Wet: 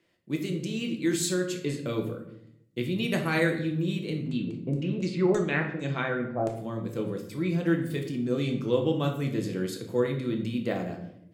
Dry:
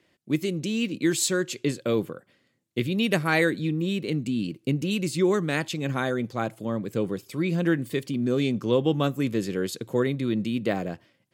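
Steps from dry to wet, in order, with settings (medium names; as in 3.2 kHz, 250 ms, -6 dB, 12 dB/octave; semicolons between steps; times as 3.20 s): 4.24–6.53 s: LFO low-pass saw down 5.8 Hz -> 1.1 Hz 510–7700 Hz; simulated room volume 180 m³, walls mixed, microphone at 0.75 m; trim -6 dB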